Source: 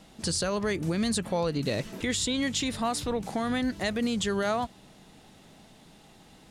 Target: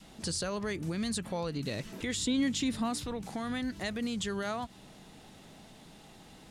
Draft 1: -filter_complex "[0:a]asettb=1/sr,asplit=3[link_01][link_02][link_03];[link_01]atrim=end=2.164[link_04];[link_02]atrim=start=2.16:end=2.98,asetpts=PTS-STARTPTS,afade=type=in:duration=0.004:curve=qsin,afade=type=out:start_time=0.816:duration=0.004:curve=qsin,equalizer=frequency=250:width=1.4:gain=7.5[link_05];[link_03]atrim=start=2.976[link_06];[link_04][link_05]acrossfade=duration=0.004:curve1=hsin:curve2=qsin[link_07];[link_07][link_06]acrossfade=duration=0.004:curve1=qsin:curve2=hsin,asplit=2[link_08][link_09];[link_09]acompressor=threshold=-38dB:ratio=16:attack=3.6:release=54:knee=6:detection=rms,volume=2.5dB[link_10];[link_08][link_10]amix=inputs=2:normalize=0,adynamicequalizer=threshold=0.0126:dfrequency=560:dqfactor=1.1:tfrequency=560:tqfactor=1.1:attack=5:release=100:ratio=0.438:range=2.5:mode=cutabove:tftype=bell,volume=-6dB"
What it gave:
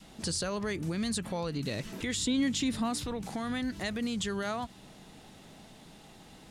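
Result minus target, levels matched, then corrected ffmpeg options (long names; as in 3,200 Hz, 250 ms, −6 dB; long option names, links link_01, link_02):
downward compressor: peak gain reduction −9.5 dB
-filter_complex "[0:a]asettb=1/sr,asplit=3[link_01][link_02][link_03];[link_01]atrim=end=2.164[link_04];[link_02]atrim=start=2.16:end=2.98,asetpts=PTS-STARTPTS,afade=type=in:duration=0.004:curve=qsin,afade=type=out:start_time=0.816:duration=0.004:curve=qsin,equalizer=frequency=250:width=1.4:gain=7.5[link_05];[link_03]atrim=start=2.976[link_06];[link_04][link_05]acrossfade=duration=0.004:curve1=hsin:curve2=qsin[link_07];[link_07][link_06]acrossfade=duration=0.004:curve1=qsin:curve2=hsin,asplit=2[link_08][link_09];[link_09]acompressor=threshold=-48dB:ratio=16:attack=3.6:release=54:knee=6:detection=rms,volume=2.5dB[link_10];[link_08][link_10]amix=inputs=2:normalize=0,adynamicequalizer=threshold=0.0126:dfrequency=560:dqfactor=1.1:tfrequency=560:tqfactor=1.1:attack=5:release=100:ratio=0.438:range=2.5:mode=cutabove:tftype=bell,volume=-6dB"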